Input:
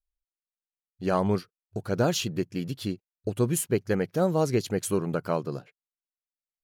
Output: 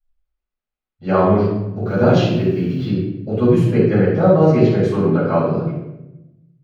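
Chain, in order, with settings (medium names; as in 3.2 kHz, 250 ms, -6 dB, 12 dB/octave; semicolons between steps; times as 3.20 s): 1.84–2.85 s: added noise violet -44 dBFS; distance through air 260 m; reverberation RT60 0.95 s, pre-delay 4 ms, DRR -12.5 dB; trim -4.5 dB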